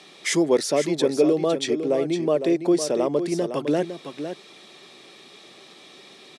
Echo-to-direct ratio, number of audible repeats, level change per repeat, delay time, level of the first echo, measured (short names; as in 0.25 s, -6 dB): -9.0 dB, 1, no steady repeat, 0.507 s, -9.0 dB